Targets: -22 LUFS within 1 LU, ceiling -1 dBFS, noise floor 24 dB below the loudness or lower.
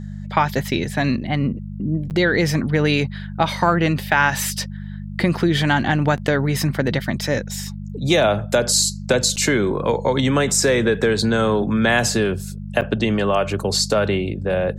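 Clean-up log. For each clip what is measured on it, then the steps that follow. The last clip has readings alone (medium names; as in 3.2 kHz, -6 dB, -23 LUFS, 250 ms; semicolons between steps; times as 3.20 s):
dropouts 4; longest dropout 8.7 ms; hum 50 Hz; highest harmonic 200 Hz; hum level -29 dBFS; loudness -19.5 LUFS; peak level -2.5 dBFS; loudness target -22.0 LUFS
-> interpolate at 2.10/6.17/9.36/12.81 s, 8.7 ms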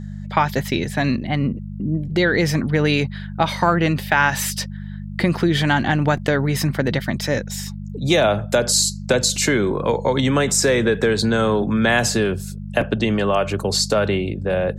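dropouts 0; hum 50 Hz; highest harmonic 200 Hz; hum level -29 dBFS
-> de-hum 50 Hz, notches 4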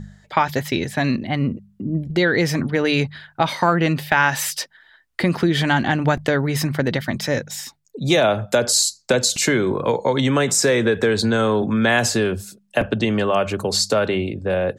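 hum not found; loudness -20.0 LUFS; peak level -3.0 dBFS; loudness target -22.0 LUFS
-> trim -2 dB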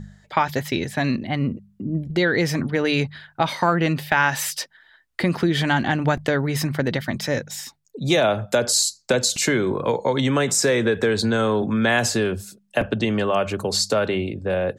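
loudness -22.0 LUFS; peak level -5.0 dBFS; noise floor -60 dBFS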